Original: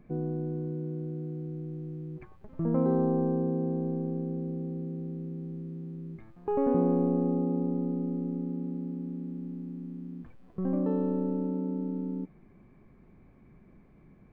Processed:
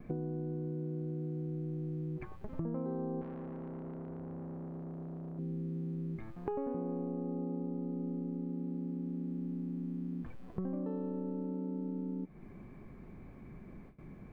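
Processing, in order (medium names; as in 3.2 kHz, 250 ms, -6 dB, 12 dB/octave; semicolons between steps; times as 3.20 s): gate with hold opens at -50 dBFS; compression 8:1, threshold -41 dBFS, peak gain reduction 19 dB; 3.21–5.39 s: valve stage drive 46 dB, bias 0.35; trim +6 dB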